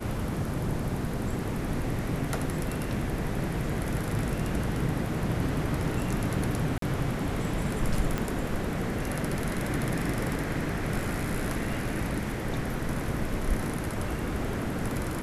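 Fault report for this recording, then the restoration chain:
6.78–6.82 s: dropout 43 ms
8.18 s: pop -15 dBFS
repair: de-click; interpolate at 6.78 s, 43 ms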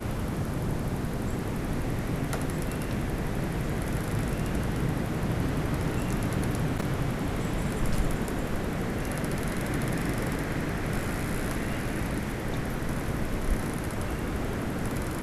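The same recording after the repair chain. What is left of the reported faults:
8.18 s: pop

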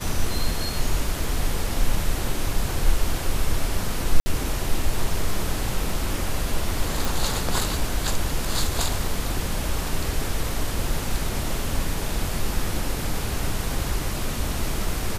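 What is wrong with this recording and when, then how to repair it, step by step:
4.20–4.26 s: dropout 60 ms
7.05 s: pop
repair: de-click; interpolate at 4.20 s, 60 ms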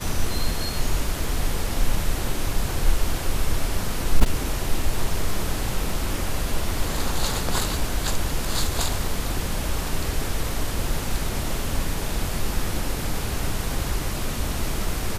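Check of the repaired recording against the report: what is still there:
nothing left

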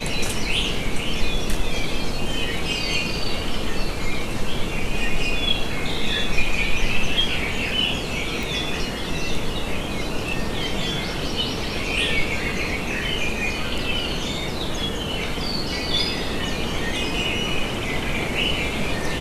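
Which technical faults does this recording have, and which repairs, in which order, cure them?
8.43 s: pop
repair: de-click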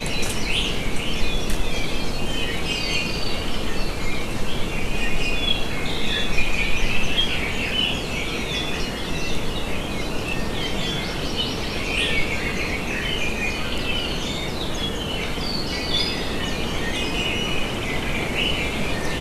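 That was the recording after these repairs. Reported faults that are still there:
nothing left

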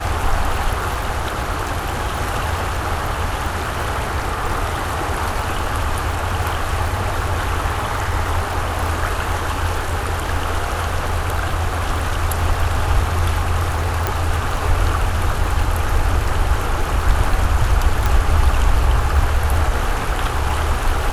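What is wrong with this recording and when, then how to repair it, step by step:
crackle 21 per s -23 dBFS
14.07 s: pop
18.06 s: pop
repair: de-click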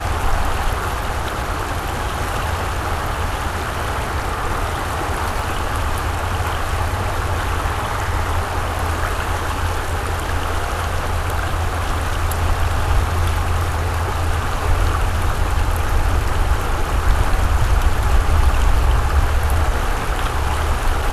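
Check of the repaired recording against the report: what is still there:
nothing left

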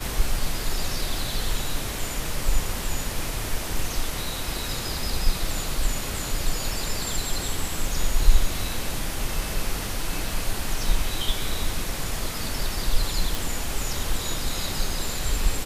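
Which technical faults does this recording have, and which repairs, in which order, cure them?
13.35 s: pop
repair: de-click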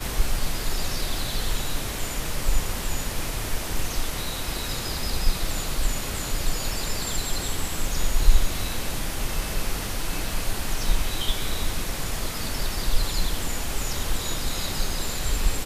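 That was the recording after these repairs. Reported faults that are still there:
nothing left

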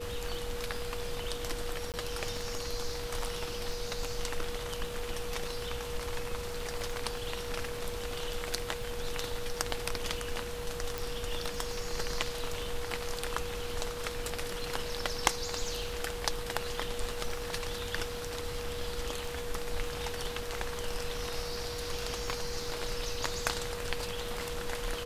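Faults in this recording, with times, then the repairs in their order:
crackle 24 per s -40 dBFS
whine 480 Hz -39 dBFS
1.92–1.94 s: dropout 18 ms
10.98 s: pop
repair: de-click; band-stop 480 Hz, Q 30; interpolate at 1.92 s, 18 ms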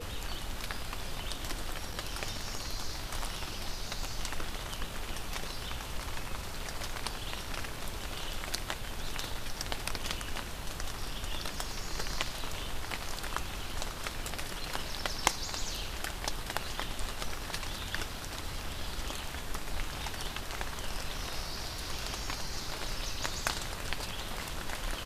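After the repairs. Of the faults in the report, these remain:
nothing left

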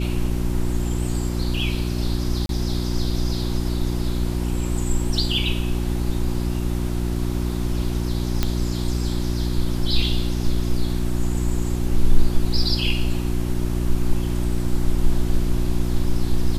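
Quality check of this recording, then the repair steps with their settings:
hum 60 Hz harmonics 6 -24 dBFS
2.46–2.49 s: dropout 32 ms
8.43 s: pop -6 dBFS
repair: de-click; de-hum 60 Hz, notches 6; interpolate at 2.46 s, 32 ms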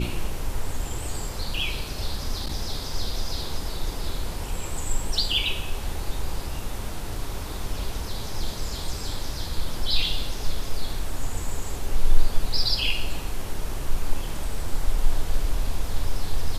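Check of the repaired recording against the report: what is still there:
nothing left

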